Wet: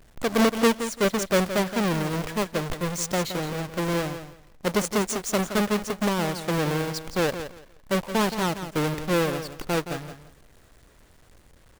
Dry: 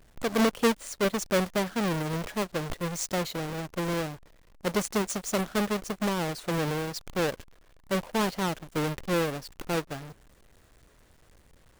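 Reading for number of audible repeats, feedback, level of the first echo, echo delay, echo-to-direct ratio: 2, 20%, −10.5 dB, 170 ms, −10.5 dB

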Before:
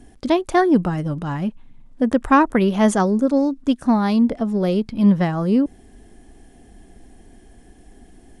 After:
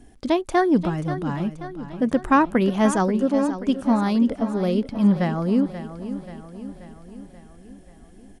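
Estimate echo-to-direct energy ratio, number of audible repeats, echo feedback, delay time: −10.5 dB, 5, 57%, 533 ms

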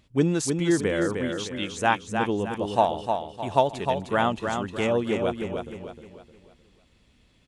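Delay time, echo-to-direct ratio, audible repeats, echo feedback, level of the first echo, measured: 307 ms, −5.0 dB, 4, 39%, −5.5 dB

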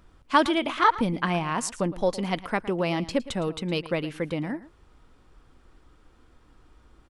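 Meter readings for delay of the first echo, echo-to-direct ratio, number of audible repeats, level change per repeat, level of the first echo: 112 ms, −17.0 dB, 1, repeats not evenly spaced, −17.0 dB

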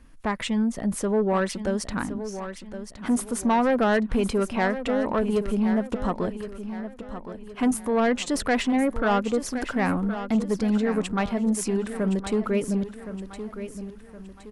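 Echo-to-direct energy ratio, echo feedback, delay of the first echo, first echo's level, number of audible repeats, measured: −10.0 dB, 41%, 1,067 ms, −11.0 dB, 4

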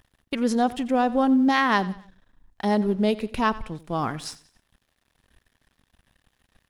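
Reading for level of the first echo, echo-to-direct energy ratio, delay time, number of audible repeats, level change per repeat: −18.5 dB, −18.0 dB, 91 ms, 3, −8.0 dB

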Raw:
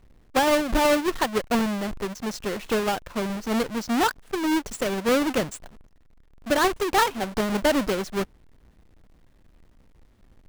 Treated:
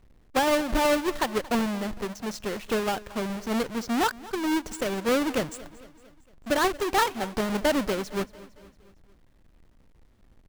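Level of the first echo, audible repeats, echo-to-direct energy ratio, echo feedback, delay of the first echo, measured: −19.5 dB, 3, −18.0 dB, 55%, 228 ms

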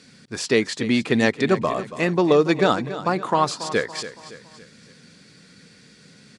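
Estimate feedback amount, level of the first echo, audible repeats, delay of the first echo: 45%, −13.5 dB, 4, 281 ms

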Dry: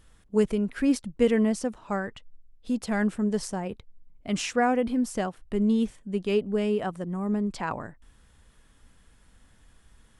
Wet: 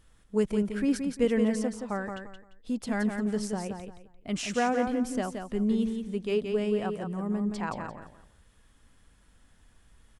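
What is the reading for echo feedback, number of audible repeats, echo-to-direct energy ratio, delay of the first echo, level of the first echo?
26%, 3, −5.5 dB, 173 ms, −6.0 dB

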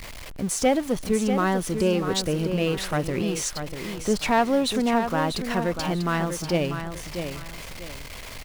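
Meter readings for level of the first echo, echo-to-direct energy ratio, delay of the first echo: −8.0 dB, −7.5 dB, 643 ms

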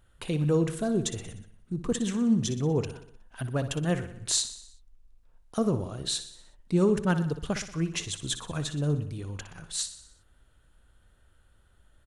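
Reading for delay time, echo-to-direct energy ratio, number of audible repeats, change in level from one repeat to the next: 61 ms, −10.5 dB, 5, −5.0 dB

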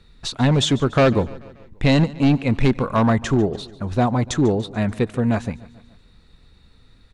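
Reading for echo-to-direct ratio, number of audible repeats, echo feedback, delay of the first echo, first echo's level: −18.5 dB, 3, 54%, 145 ms, −20.0 dB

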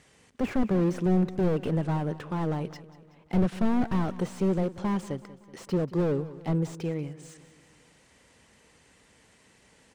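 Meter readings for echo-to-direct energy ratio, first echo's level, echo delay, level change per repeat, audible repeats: −15.5 dB, −17.0 dB, 188 ms, −5.5 dB, 4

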